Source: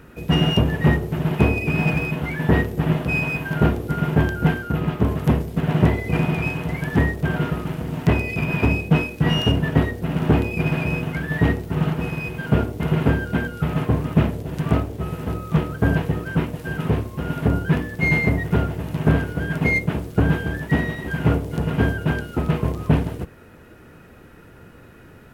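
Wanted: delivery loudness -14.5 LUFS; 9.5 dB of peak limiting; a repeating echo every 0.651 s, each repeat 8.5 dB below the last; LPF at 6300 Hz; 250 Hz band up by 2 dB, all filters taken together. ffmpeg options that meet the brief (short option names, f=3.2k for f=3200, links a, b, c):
-af "lowpass=6.3k,equalizer=f=250:t=o:g=3,alimiter=limit=-11dB:level=0:latency=1,aecho=1:1:651|1302|1953|2604:0.376|0.143|0.0543|0.0206,volume=8dB"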